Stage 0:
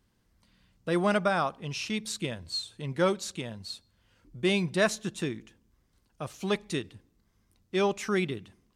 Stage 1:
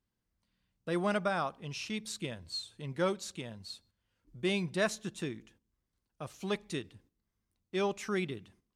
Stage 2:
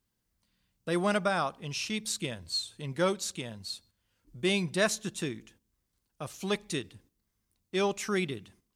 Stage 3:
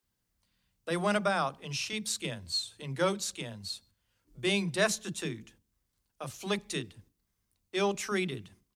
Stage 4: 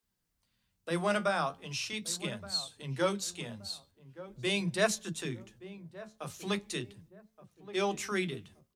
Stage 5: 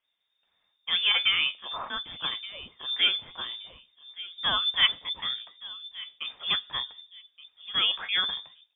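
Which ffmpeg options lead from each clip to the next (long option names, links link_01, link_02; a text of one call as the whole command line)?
ffmpeg -i in.wav -af "agate=range=-9dB:threshold=-58dB:ratio=16:detection=peak,volume=-5.5dB" out.wav
ffmpeg -i in.wav -af "highshelf=frequency=4500:gain=7.5,volume=3dB" out.wav
ffmpeg -i in.wav -filter_complex "[0:a]acrossover=split=290[link_01][link_02];[link_01]adelay=30[link_03];[link_03][link_02]amix=inputs=2:normalize=0" out.wav
ffmpeg -i in.wav -filter_complex "[0:a]asplit=2[link_01][link_02];[link_02]adelay=1173,lowpass=frequency=860:poles=1,volume=-14dB,asplit=2[link_03][link_04];[link_04]adelay=1173,lowpass=frequency=860:poles=1,volume=0.38,asplit=2[link_05][link_06];[link_06]adelay=1173,lowpass=frequency=860:poles=1,volume=0.38,asplit=2[link_07][link_08];[link_08]adelay=1173,lowpass=frequency=860:poles=1,volume=0.38[link_09];[link_01][link_03][link_05][link_07][link_09]amix=inputs=5:normalize=0,flanger=delay=4.2:depth=9.7:regen=58:speed=0.41:shape=triangular,volume=2.5dB" out.wav
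ffmpeg -i in.wav -af "lowpass=frequency=3100:width_type=q:width=0.5098,lowpass=frequency=3100:width_type=q:width=0.6013,lowpass=frequency=3100:width_type=q:width=0.9,lowpass=frequency=3100:width_type=q:width=2.563,afreqshift=-3700,volume=5.5dB" out.wav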